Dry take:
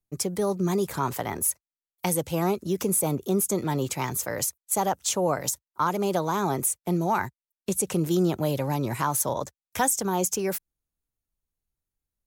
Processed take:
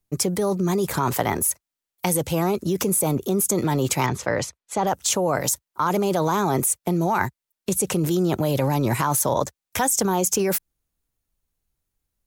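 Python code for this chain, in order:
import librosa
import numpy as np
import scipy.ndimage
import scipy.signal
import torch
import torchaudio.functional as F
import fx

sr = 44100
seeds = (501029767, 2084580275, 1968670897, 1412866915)

p1 = fx.lowpass(x, sr, hz=3800.0, slope=12, at=(4.06, 4.87))
p2 = fx.over_compress(p1, sr, threshold_db=-28.0, ratio=-0.5)
y = p1 + F.gain(torch.from_numpy(p2), 0.0).numpy()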